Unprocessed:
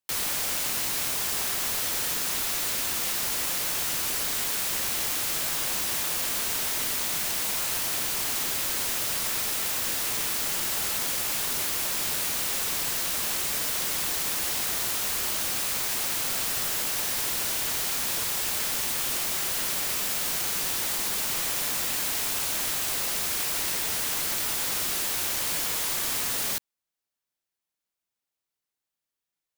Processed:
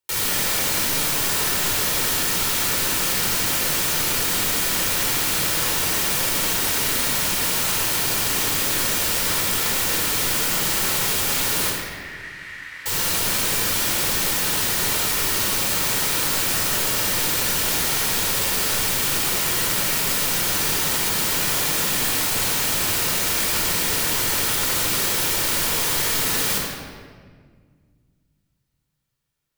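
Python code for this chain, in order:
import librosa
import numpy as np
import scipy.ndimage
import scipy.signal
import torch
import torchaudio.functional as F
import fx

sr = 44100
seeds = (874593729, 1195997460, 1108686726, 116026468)

y = fx.bandpass_q(x, sr, hz=1900.0, q=6.6, at=(11.7, 12.86))
y = fx.room_shoebox(y, sr, seeds[0], volume_m3=2700.0, walls='mixed', distance_m=4.5)
y = F.gain(torch.from_numpy(y), 1.5).numpy()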